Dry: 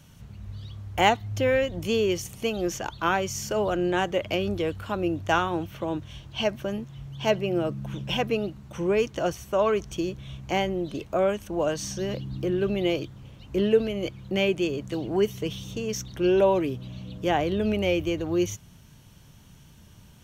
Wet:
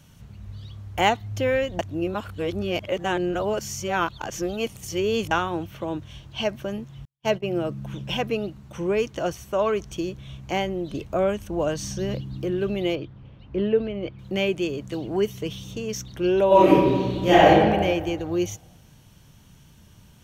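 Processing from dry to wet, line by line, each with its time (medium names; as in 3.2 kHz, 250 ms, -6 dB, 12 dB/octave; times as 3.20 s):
1.79–5.31 s: reverse
7.05–7.55 s: gate -31 dBFS, range -52 dB
10.90–12.21 s: bass shelf 180 Hz +7 dB
12.95–14.19 s: distance through air 290 m
16.47–17.48 s: reverb throw, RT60 1.5 s, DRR -11 dB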